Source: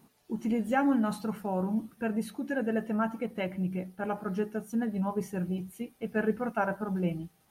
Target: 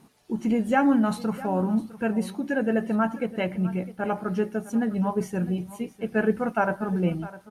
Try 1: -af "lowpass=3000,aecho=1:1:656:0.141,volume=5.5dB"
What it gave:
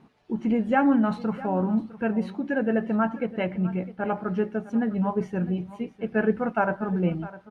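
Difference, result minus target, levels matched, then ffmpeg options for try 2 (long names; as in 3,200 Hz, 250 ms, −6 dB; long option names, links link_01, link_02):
8,000 Hz band −16.5 dB
-af "lowpass=11000,aecho=1:1:656:0.141,volume=5.5dB"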